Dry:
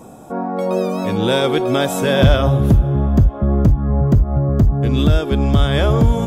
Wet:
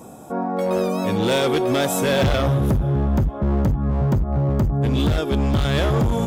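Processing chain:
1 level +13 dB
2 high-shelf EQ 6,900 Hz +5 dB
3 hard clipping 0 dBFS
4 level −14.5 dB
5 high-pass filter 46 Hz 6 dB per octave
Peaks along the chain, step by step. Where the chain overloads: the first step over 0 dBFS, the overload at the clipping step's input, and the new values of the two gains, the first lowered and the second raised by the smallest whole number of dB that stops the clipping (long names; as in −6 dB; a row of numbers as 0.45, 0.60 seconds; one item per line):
+9.5, +9.5, 0.0, −14.5, −9.5 dBFS
step 1, 9.5 dB
step 1 +3 dB, step 4 −4.5 dB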